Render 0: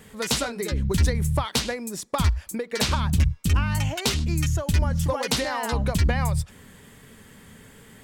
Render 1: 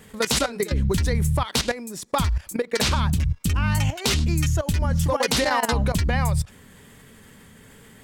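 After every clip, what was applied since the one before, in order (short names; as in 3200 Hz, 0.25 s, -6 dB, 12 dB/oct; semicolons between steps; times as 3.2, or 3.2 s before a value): level quantiser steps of 14 dB; gain +7.5 dB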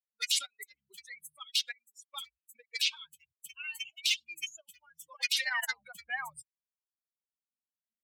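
per-bin expansion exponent 3; high-pass sweep 2700 Hz -> 200 Hz, 5.23–7.98; gain -3.5 dB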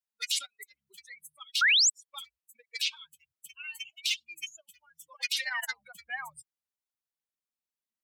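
painted sound rise, 1.61–1.9, 1300–8200 Hz -21 dBFS; gain -1 dB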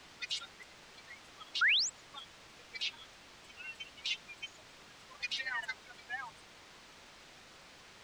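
in parallel at -5.5 dB: requantised 6-bit, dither triangular; on the sum: air absorption 140 m; gain -7 dB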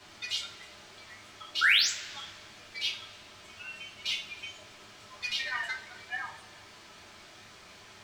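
added harmonics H 7 -32 dB, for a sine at -21.5 dBFS; two-slope reverb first 0.32 s, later 1.8 s, from -19 dB, DRR -4.5 dB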